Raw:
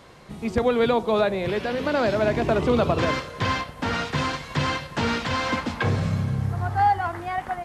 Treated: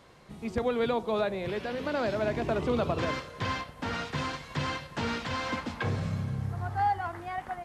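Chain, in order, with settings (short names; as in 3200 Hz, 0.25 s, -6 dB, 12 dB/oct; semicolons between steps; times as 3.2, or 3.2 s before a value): gain -7.5 dB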